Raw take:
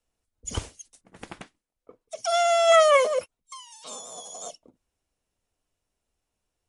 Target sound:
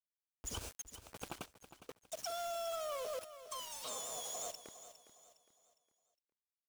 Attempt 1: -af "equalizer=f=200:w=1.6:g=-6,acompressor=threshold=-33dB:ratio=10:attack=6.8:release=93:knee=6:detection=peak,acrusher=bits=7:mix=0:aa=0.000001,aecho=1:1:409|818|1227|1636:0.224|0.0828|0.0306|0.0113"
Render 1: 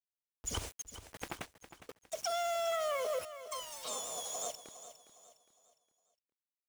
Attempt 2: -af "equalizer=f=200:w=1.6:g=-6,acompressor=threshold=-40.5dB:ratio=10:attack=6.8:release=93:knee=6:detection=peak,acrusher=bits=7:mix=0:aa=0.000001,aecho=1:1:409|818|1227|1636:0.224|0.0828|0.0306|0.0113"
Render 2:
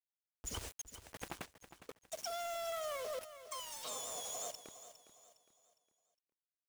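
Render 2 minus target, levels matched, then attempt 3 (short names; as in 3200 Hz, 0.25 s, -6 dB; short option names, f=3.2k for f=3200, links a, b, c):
2000 Hz band +3.0 dB
-af "asuperstop=centerf=1900:order=20:qfactor=3.1,equalizer=f=200:w=1.6:g=-6,acompressor=threshold=-40.5dB:ratio=10:attack=6.8:release=93:knee=6:detection=peak,acrusher=bits=7:mix=0:aa=0.000001,aecho=1:1:409|818|1227|1636:0.224|0.0828|0.0306|0.0113"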